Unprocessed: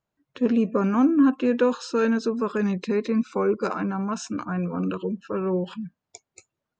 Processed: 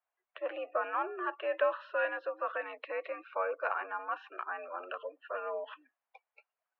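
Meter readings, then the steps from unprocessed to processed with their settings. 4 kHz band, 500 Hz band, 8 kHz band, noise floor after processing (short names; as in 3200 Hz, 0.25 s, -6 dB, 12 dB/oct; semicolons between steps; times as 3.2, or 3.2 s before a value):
-11.0 dB, -10.0 dB, n/a, under -85 dBFS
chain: mistuned SSB +81 Hz 530–2800 Hz; gain -3.5 dB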